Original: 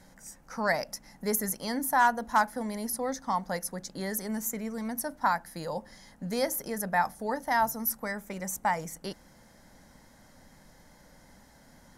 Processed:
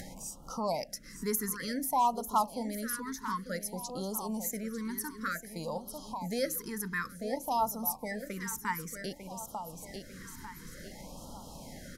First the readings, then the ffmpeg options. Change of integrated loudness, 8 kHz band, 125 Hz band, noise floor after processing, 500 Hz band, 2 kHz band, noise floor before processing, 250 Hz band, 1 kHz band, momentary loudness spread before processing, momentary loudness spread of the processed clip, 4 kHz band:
−4.5 dB, −2.0 dB, −1.5 dB, −50 dBFS, −3.5 dB, −7.0 dB, −58 dBFS, −2.0 dB, −4.5 dB, 12 LU, 15 LU, −2.0 dB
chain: -af "aecho=1:1:897|1794|2691:0.282|0.0789|0.0221,acompressor=mode=upward:threshold=-30dB:ratio=2.5,afftfilt=real='re*(1-between(b*sr/1024,610*pow(2000/610,0.5+0.5*sin(2*PI*0.55*pts/sr))/1.41,610*pow(2000/610,0.5+0.5*sin(2*PI*0.55*pts/sr))*1.41))':imag='im*(1-between(b*sr/1024,610*pow(2000/610,0.5+0.5*sin(2*PI*0.55*pts/sr))/1.41,610*pow(2000/610,0.5+0.5*sin(2*PI*0.55*pts/sr))*1.41))':win_size=1024:overlap=0.75,volume=-3dB"

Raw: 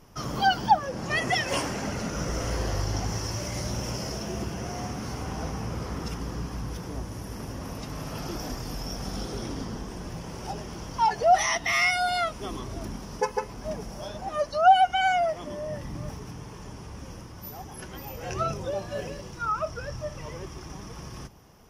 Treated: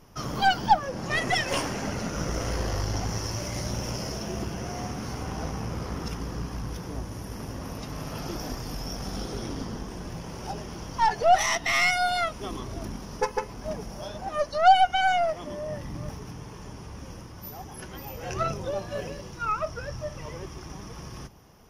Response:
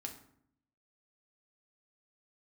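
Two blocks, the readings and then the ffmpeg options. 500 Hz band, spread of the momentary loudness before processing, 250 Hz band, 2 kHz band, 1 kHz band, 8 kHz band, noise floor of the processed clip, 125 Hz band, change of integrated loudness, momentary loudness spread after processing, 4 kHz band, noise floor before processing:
0.0 dB, 18 LU, 0.0 dB, +0.5 dB, 0.0 dB, 0.0 dB, −42 dBFS, 0.0 dB, 0.0 dB, 18 LU, +0.5 dB, −42 dBFS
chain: -af "bandreject=frequency=7800:width=6.6,aeval=exprs='0.376*(cos(1*acos(clip(val(0)/0.376,-1,1)))-cos(1*PI/2))+0.0299*(cos(6*acos(clip(val(0)/0.376,-1,1)))-cos(6*PI/2))':channel_layout=same"

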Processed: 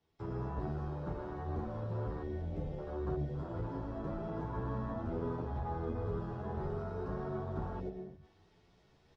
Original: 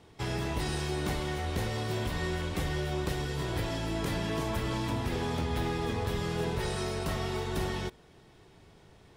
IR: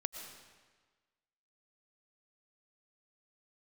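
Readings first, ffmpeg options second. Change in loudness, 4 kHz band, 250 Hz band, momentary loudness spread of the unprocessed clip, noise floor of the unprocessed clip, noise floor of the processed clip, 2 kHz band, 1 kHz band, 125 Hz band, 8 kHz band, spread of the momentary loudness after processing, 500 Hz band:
−6.5 dB, below −25 dB, −6.0 dB, 1 LU, −57 dBFS, −67 dBFS, −17.0 dB, −6.5 dB, −5.5 dB, below −30 dB, 3 LU, −5.5 dB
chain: -filter_complex "[0:a]acrossover=split=210|2100[link_01][link_02][link_03];[link_03]acompressor=threshold=-52dB:ratio=10[link_04];[link_01][link_02][link_04]amix=inputs=3:normalize=0[link_05];[1:a]atrim=start_sample=2205[link_06];[link_05][link_06]afir=irnorm=-1:irlink=0,afwtdn=0.0178,highshelf=frequency=7500:width_type=q:width=1.5:gain=-9.5,areverse,acompressor=mode=upward:threshold=-50dB:ratio=2.5,areverse,asplit=2[link_07][link_08];[link_08]adelay=10.2,afreqshift=1.2[link_09];[link_07][link_09]amix=inputs=2:normalize=1,volume=-2dB"

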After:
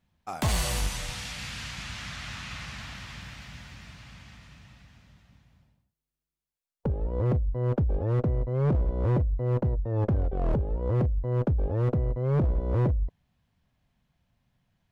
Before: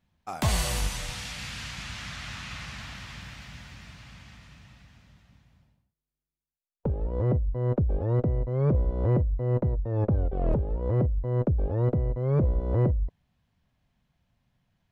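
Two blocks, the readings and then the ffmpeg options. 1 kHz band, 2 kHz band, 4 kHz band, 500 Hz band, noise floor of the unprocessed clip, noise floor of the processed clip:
+0.5 dB, 0.0 dB, can't be measured, −1.0 dB, below −85 dBFS, below −85 dBFS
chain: -af "asoftclip=type=hard:threshold=-20.5dB"

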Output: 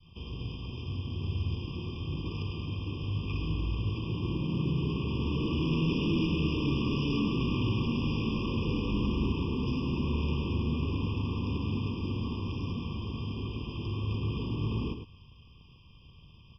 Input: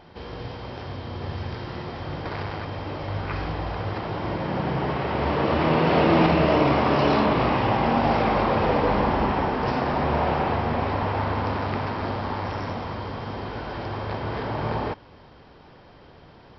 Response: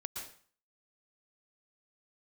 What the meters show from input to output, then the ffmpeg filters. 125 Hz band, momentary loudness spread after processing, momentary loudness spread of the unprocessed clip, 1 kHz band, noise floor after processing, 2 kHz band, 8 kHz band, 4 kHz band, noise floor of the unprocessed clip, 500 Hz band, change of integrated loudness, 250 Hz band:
−2.0 dB, 8 LU, 14 LU, −20.5 dB, −55 dBFS, −12.5 dB, can't be measured, −4.0 dB, −49 dBFS, −14.5 dB, −7.5 dB, −5.0 dB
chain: -filter_complex "[0:a]adynamicequalizer=threshold=0.0178:dfrequency=1800:dqfactor=0.85:tfrequency=1800:tqfactor=0.85:attack=5:release=100:ratio=0.375:range=2:mode=cutabove:tftype=bell,aresample=11025,asoftclip=type=hard:threshold=-22.5dB,aresample=44100,asuperstop=centerf=700:order=4:qfactor=0.61,acrossover=split=180|570[link_01][link_02][link_03];[link_02]aeval=exprs='sgn(val(0))*max(abs(val(0))-0.002,0)':channel_layout=same[link_04];[link_01][link_04][link_03]amix=inputs=3:normalize=0,asplit=2[link_05][link_06];[link_06]adelay=105,volume=-8dB,highshelf=frequency=4000:gain=-2.36[link_07];[link_05][link_07]amix=inputs=2:normalize=0,afftfilt=real='re*eq(mod(floor(b*sr/1024/1200),2),0)':imag='im*eq(mod(floor(b*sr/1024/1200),2),0)':win_size=1024:overlap=0.75"

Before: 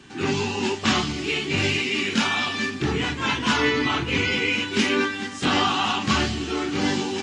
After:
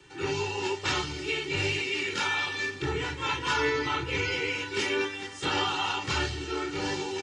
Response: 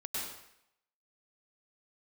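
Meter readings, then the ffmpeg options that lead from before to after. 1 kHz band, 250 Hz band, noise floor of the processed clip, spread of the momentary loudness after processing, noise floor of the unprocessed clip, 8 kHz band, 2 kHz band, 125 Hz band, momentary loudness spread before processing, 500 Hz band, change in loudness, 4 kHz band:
−5.5 dB, −12.0 dB, −41 dBFS, 4 LU, −34 dBFS, −6.0 dB, −5.5 dB, −7.0 dB, 5 LU, −4.0 dB, −6.0 dB, −6.5 dB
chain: -filter_complex "[0:a]aecho=1:1:2.2:0.96,acrossover=split=120|810|1400[link_01][link_02][link_03][link_04];[link_03]crystalizer=i=6:c=0[link_05];[link_01][link_02][link_05][link_04]amix=inputs=4:normalize=0,volume=-9dB"

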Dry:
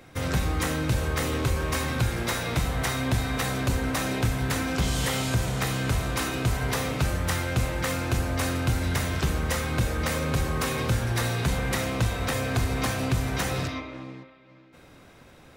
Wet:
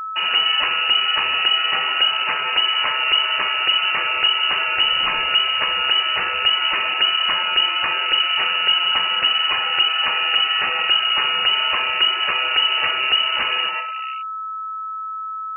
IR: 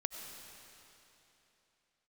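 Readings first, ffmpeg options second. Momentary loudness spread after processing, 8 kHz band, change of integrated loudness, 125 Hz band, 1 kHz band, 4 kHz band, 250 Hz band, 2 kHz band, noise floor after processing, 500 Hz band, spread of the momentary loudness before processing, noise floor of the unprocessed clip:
6 LU, below −40 dB, +10.5 dB, below −25 dB, +10.5 dB, +21.0 dB, −16.5 dB, +11.5 dB, −29 dBFS, −4.0 dB, 2 LU, −52 dBFS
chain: -filter_complex "[0:a]asplit=2[link_01][link_02];[1:a]atrim=start_sample=2205,afade=type=out:start_time=0.32:duration=0.01,atrim=end_sample=14553[link_03];[link_02][link_03]afir=irnorm=-1:irlink=0,volume=-15dB[link_04];[link_01][link_04]amix=inputs=2:normalize=0,aeval=exprs='val(0)*gte(abs(val(0)),0.0168)':channel_layout=same,lowpass=frequency=2600:width_type=q:width=0.5098,lowpass=frequency=2600:width_type=q:width=0.6013,lowpass=frequency=2600:width_type=q:width=0.9,lowpass=frequency=2600:width_type=q:width=2.563,afreqshift=-3000,afftfilt=real='re*gte(hypot(re,im),0.0126)':imag='im*gte(hypot(re,im),0.0126)':win_size=1024:overlap=0.75,aeval=exprs='val(0)+0.0282*sin(2*PI*1300*n/s)':channel_layout=same,volume=5.5dB"

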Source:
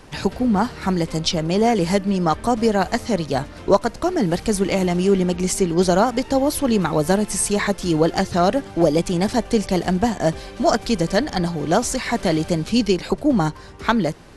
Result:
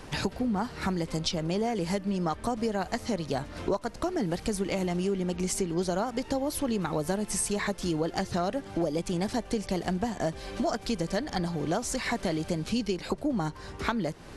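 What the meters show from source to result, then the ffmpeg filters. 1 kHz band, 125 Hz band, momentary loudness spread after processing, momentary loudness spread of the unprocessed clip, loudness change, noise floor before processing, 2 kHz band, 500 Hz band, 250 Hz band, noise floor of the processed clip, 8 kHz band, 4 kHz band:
−11.0 dB, −9.5 dB, 3 LU, 4 LU, −10.5 dB, −39 dBFS, −9.0 dB, −11.0 dB, −10.5 dB, −45 dBFS, −8.5 dB, −9.0 dB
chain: -af "acompressor=threshold=-28dB:ratio=4"

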